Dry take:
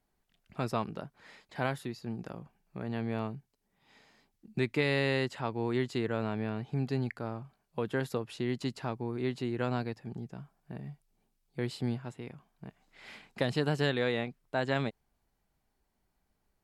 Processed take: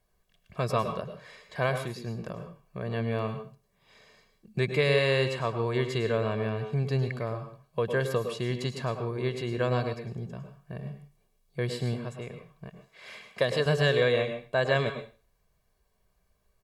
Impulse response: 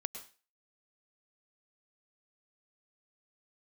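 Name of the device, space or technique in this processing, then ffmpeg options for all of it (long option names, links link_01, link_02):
microphone above a desk: -filter_complex "[0:a]asettb=1/sr,asplit=3[link_01][link_02][link_03];[link_01]atrim=end=12.684[link_04];[link_02]atrim=start=12.68:end=13.66,asetpts=PTS-STARTPTS,afade=type=in:duration=0.004:curve=qsin,afade=type=out:start_time=0.976:duration=0.004:curve=qsin,highpass=frequency=220:poles=1[link_05];[link_03]atrim=start=13.656[link_06];[link_04][link_05]acrossfade=duration=0.004:curve1=hsin:curve2=qsin[link_07];[link_07][link_06]acrossfade=duration=0.004:curve1=qsin:curve2=hsin,aecho=1:1:1.8:0.68[link_08];[1:a]atrim=start_sample=2205[link_09];[link_08][link_09]afir=irnorm=-1:irlink=0,volume=4.5dB"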